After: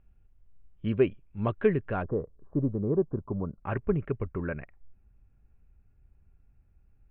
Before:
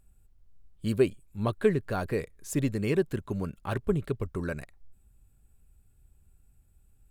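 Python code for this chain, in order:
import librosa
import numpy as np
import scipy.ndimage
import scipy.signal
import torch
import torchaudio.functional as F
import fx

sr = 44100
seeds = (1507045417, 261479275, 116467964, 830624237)

y = fx.steep_lowpass(x, sr, hz=fx.steps((0.0, 3000.0), (2.02, 1200.0), (3.6, 2600.0)), slope=48)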